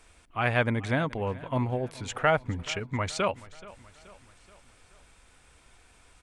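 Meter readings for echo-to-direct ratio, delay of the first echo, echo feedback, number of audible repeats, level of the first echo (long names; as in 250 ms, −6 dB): −18.5 dB, 428 ms, 52%, 3, −20.0 dB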